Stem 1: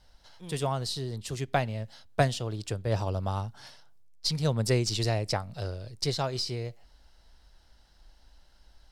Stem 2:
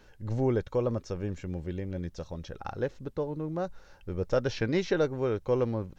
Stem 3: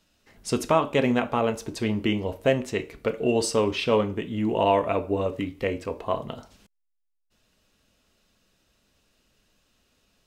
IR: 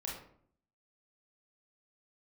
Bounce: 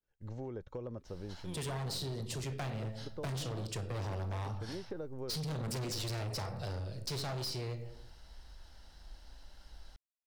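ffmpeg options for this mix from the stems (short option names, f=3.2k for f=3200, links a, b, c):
-filter_complex "[0:a]acrossover=split=290|3000[a][b][c];[b]acompressor=threshold=-29dB:ratio=6[d];[a][d][c]amix=inputs=3:normalize=0,adelay=1050,volume=0.5dB,asplit=2[e][f];[f]volume=-4dB[g];[1:a]agate=range=-33dB:threshold=-42dB:ratio=3:detection=peak,acrossover=split=410|1300[h][i][j];[h]acompressor=threshold=-31dB:ratio=4[k];[i]acompressor=threshold=-33dB:ratio=4[l];[j]acompressor=threshold=-57dB:ratio=4[m];[k][l][m]amix=inputs=3:normalize=0,volume=-8dB[n];[3:a]atrim=start_sample=2205[o];[g][o]afir=irnorm=-1:irlink=0[p];[e][n][p]amix=inputs=3:normalize=0,volume=29dB,asoftclip=hard,volume=-29dB,acompressor=threshold=-38dB:ratio=4"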